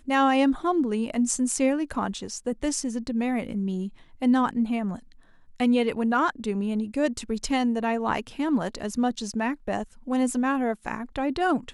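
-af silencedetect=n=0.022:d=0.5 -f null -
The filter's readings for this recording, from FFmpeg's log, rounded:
silence_start: 4.96
silence_end: 5.60 | silence_duration: 0.64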